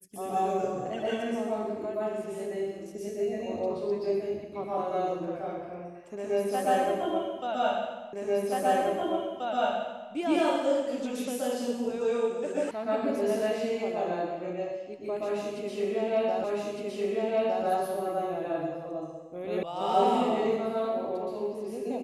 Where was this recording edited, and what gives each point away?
0:08.13: the same again, the last 1.98 s
0:12.71: cut off before it has died away
0:16.44: the same again, the last 1.21 s
0:19.63: cut off before it has died away

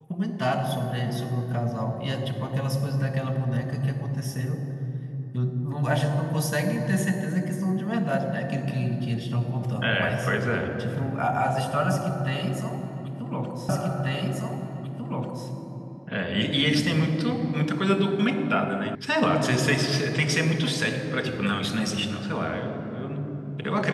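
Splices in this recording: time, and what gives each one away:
0:13.69: the same again, the last 1.79 s
0:18.95: cut off before it has died away

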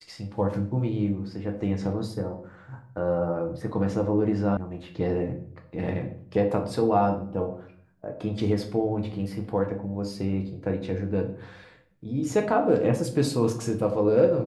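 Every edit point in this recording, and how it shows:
0:04.57: cut off before it has died away

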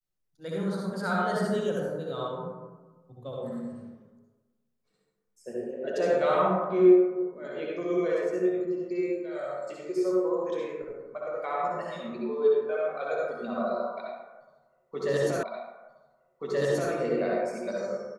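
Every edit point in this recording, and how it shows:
0:15.43: the same again, the last 1.48 s

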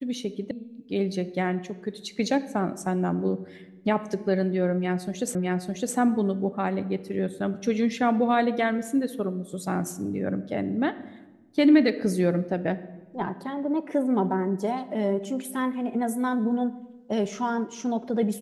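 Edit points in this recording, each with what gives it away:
0:00.51: cut off before it has died away
0:05.35: the same again, the last 0.61 s

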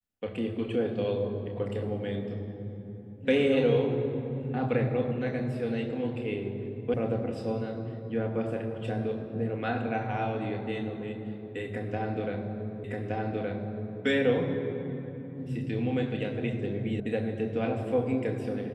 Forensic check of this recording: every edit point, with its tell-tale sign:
0:06.94: cut off before it has died away
0:12.84: the same again, the last 1.17 s
0:17.00: cut off before it has died away

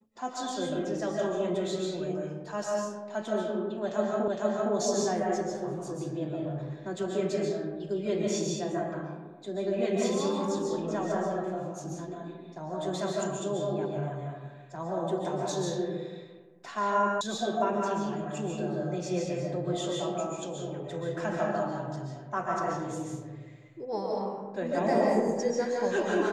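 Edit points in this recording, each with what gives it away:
0:04.28: the same again, the last 0.46 s
0:17.21: cut off before it has died away

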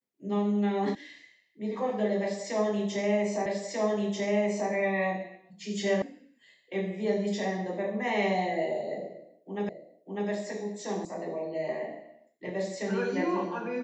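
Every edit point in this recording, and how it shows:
0:00.95: cut off before it has died away
0:03.46: the same again, the last 1.24 s
0:06.02: cut off before it has died away
0:09.69: the same again, the last 0.6 s
0:11.05: cut off before it has died away

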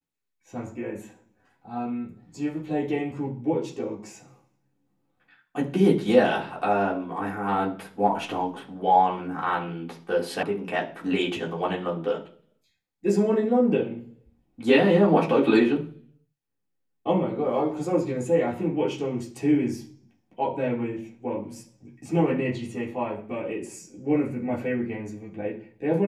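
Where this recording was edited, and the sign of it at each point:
0:10.43: cut off before it has died away

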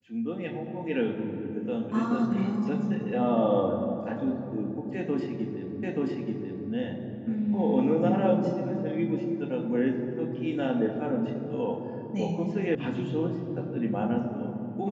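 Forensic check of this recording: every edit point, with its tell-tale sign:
0:05.83: the same again, the last 0.88 s
0:12.75: cut off before it has died away

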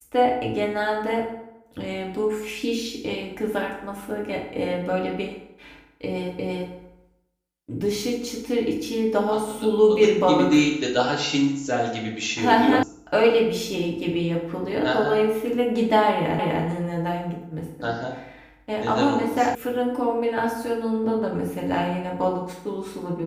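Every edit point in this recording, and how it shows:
0:06.39: the same again, the last 0.34 s
0:12.83: cut off before it has died away
0:16.39: the same again, the last 0.25 s
0:19.55: cut off before it has died away

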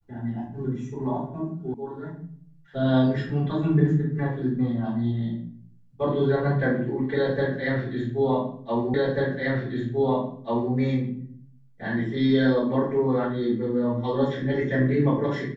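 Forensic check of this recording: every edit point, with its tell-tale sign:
0:01.74: cut off before it has died away
0:08.94: the same again, the last 1.79 s

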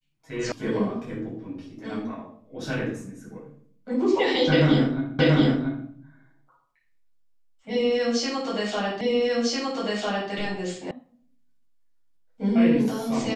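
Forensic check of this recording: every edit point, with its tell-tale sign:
0:00.52: cut off before it has died away
0:05.19: the same again, the last 0.68 s
0:09.01: the same again, the last 1.3 s
0:10.91: cut off before it has died away

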